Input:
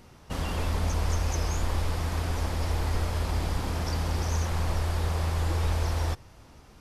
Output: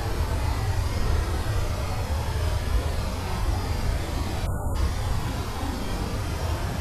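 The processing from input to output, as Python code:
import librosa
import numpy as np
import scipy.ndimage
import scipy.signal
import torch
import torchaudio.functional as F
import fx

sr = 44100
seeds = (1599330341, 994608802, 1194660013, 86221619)

y = fx.paulstretch(x, sr, seeds[0], factor=6.7, window_s=0.05, from_s=2.8)
y = fx.spec_erase(y, sr, start_s=4.46, length_s=0.3, low_hz=1500.0, high_hz=6700.0)
y = F.gain(torch.from_numpy(y), 2.0).numpy()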